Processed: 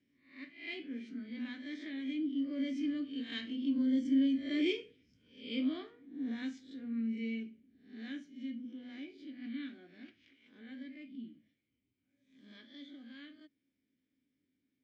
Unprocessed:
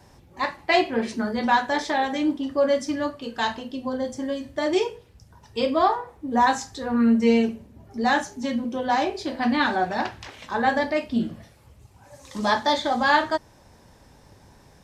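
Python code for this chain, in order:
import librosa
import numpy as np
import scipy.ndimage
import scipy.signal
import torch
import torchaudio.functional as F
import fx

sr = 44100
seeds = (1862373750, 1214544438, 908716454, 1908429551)

y = fx.spec_swells(x, sr, rise_s=0.48)
y = fx.doppler_pass(y, sr, speed_mps=7, closest_m=5.9, pass_at_s=4.22)
y = fx.vowel_filter(y, sr, vowel='i')
y = F.gain(torch.from_numpy(y), 3.0).numpy()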